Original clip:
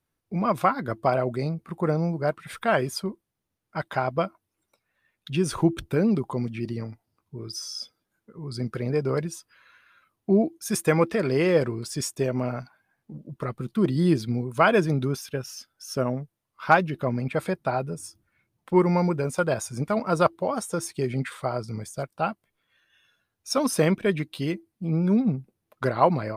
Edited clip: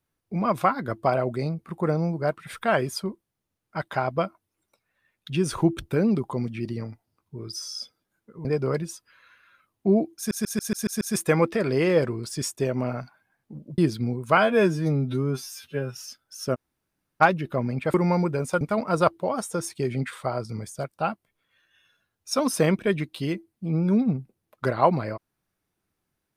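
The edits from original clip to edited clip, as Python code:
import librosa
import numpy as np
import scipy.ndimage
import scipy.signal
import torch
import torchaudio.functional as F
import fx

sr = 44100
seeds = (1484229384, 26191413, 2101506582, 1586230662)

y = fx.edit(x, sr, fx.cut(start_s=8.45, length_s=0.43),
    fx.stutter(start_s=10.6, slice_s=0.14, count=7),
    fx.cut(start_s=13.37, length_s=0.69),
    fx.stretch_span(start_s=14.65, length_s=0.79, factor=2.0),
    fx.room_tone_fill(start_s=16.04, length_s=0.66, crossfade_s=0.02),
    fx.cut(start_s=17.43, length_s=1.36),
    fx.cut(start_s=19.46, length_s=0.34), tone=tone)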